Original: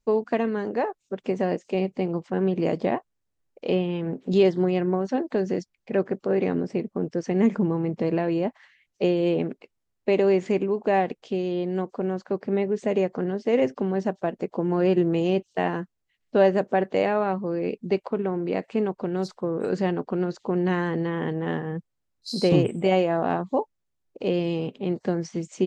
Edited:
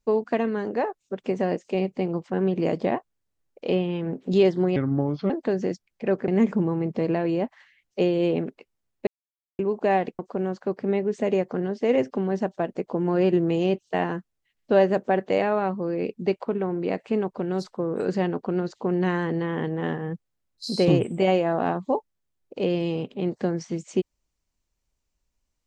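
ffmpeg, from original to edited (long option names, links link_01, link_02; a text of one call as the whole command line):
ffmpeg -i in.wav -filter_complex "[0:a]asplit=7[link_01][link_02][link_03][link_04][link_05][link_06][link_07];[link_01]atrim=end=4.764[link_08];[link_02]atrim=start=4.76:end=5.17,asetpts=PTS-STARTPTS,asetrate=33516,aresample=44100[link_09];[link_03]atrim=start=5.166:end=6.152[link_10];[link_04]atrim=start=7.308:end=10.1,asetpts=PTS-STARTPTS,afade=type=out:start_time=2.788:duration=0.004:curve=hsin[link_11];[link_05]atrim=start=10.1:end=10.62,asetpts=PTS-STARTPTS,volume=0[link_12];[link_06]atrim=start=10.62:end=11.222,asetpts=PTS-STARTPTS,afade=type=in:duration=0.004:curve=hsin[link_13];[link_07]atrim=start=11.828[link_14];[link_08][link_09]acrossfade=duration=0.004:curve1=hsin:curve2=hsin[link_15];[link_15][link_10]acrossfade=duration=0.004:curve1=hsin:curve2=hsin[link_16];[link_11][link_12][link_13]concat=n=3:v=0:a=1[link_17];[link_16][link_17]acrossfade=duration=0.004:curve1=hsin:curve2=hsin[link_18];[link_18][link_14]acrossfade=duration=0.004:curve1=hsin:curve2=hsin" out.wav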